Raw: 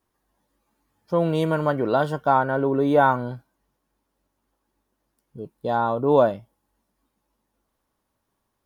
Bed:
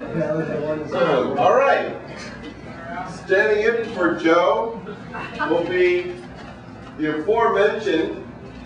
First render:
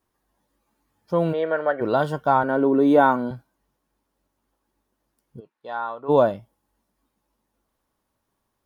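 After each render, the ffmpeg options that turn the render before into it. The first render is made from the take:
-filter_complex "[0:a]asplit=3[a][b][c];[a]afade=t=out:st=1.32:d=0.02[d];[b]highpass=480,equalizer=f=500:t=q:w=4:g=5,equalizer=f=700:t=q:w=4:g=5,equalizer=f=1k:t=q:w=4:g=-9,equalizer=f=1.7k:t=q:w=4:g=9,equalizer=f=2.7k:t=q:w=4:g=-8,lowpass=f=3.1k:w=0.5412,lowpass=f=3.1k:w=1.3066,afade=t=in:st=1.32:d=0.02,afade=t=out:st=1.8:d=0.02[e];[c]afade=t=in:st=1.8:d=0.02[f];[d][e][f]amix=inputs=3:normalize=0,asettb=1/sr,asplit=3[g][h][i];[g]atrim=end=2.434[j];[h]atrim=start=2.43:end=3.31,asetpts=PTS-STARTPTS,afade=t=in:d=0.004:c=qsin,afade=t=out:st=0.876:d=0.004:c=qsin,highpass=f=230:t=q:w=1.8[k];[i]atrim=start=3.306[l];[j][k]acrossfade=d=0.004:c1=hsin:c2=qsin[m];[m][l]acrossfade=d=0.004:c1=qsin:c2=hsin,asplit=3[n][o][p];[n]afade=t=out:st=5.39:d=0.02[q];[o]bandpass=f=1.8k:t=q:w=1.1,afade=t=in:st=5.39:d=0.02,afade=t=out:st=6.08:d=0.02[r];[p]afade=t=in:st=6.08:d=0.02[s];[q][r][s]amix=inputs=3:normalize=0"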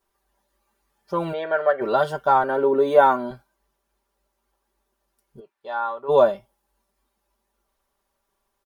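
-af "equalizer=f=180:t=o:w=1.2:g=-11.5,aecho=1:1:5.1:0.84"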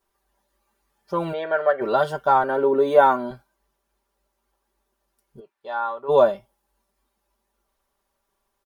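-af anull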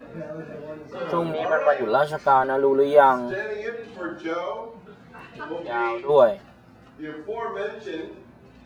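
-filter_complex "[1:a]volume=-12.5dB[a];[0:a][a]amix=inputs=2:normalize=0"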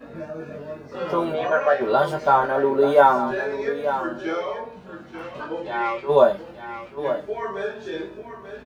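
-filter_complex "[0:a]asplit=2[a][b];[b]adelay=21,volume=-5dB[c];[a][c]amix=inputs=2:normalize=0,aecho=1:1:885:0.316"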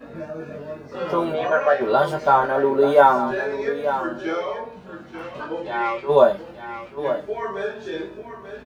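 -af "volume=1dB"

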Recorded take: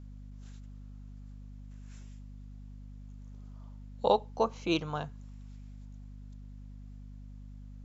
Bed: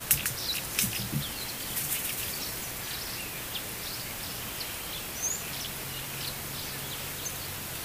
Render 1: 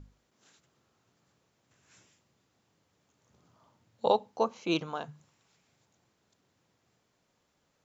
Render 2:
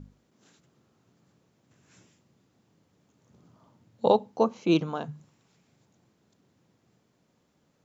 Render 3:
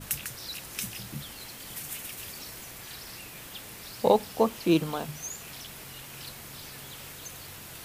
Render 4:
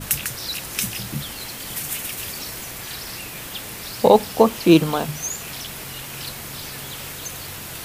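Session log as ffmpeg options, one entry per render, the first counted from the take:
-af "bandreject=f=50:t=h:w=6,bandreject=f=100:t=h:w=6,bandreject=f=150:t=h:w=6,bandreject=f=200:t=h:w=6,bandreject=f=250:t=h:w=6"
-af "equalizer=f=200:w=0.5:g=10"
-filter_complex "[1:a]volume=-7dB[a];[0:a][a]amix=inputs=2:normalize=0"
-af "volume=10dB,alimiter=limit=-1dB:level=0:latency=1"

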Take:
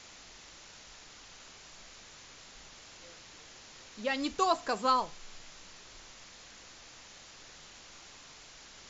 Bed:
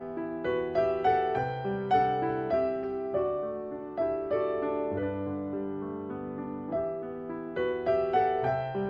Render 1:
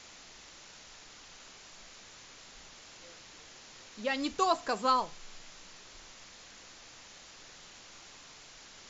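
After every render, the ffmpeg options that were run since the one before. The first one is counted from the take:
-af "bandreject=f=50:t=h:w=4,bandreject=f=100:t=h:w=4,bandreject=f=150:t=h:w=4"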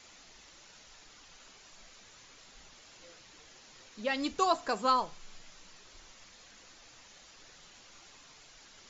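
-af "afftdn=nr=6:nf=-53"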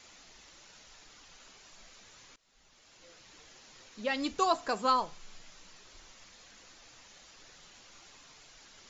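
-filter_complex "[0:a]asplit=2[a][b];[a]atrim=end=2.36,asetpts=PTS-STARTPTS,afade=t=out:st=2.356:d=0.004:c=hsin:silence=0.0707946[c];[b]atrim=start=2.36,asetpts=PTS-STARTPTS,afade=t=in:d=0.97:silence=0.0707946[d];[c][d]concat=n=2:v=0:a=1"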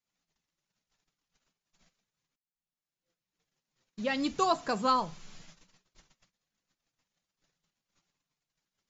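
-af "agate=range=-37dB:threshold=-51dB:ratio=16:detection=peak,equalizer=f=160:t=o:w=0.93:g=13"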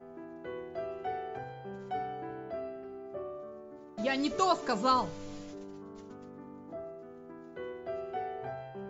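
-filter_complex "[1:a]volume=-11.5dB[a];[0:a][a]amix=inputs=2:normalize=0"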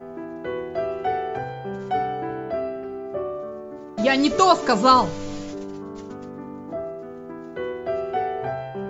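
-af "volume=12dB,alimiter=limit=-3dB:level=0:latency=1"

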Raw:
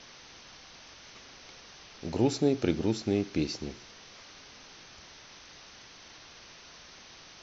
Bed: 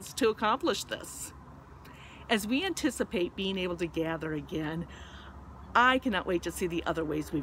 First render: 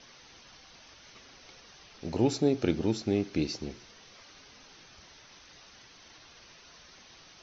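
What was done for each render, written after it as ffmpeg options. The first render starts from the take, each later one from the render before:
-af "afftdn=nr=6:nf=-52"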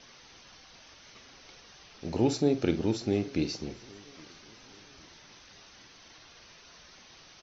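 -filter_complex "[0:a]asplit=2[a][b];[b]adelay=48,volume=-12.5dB[c];[a][c]amix=inputs=2:normalize=0,aecho=1:1:811|1622|2433:0.0631|0.0271|0.0117"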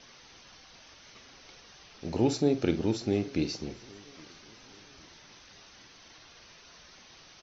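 -af anull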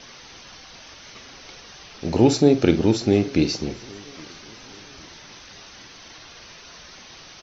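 -af "volume=10dB"

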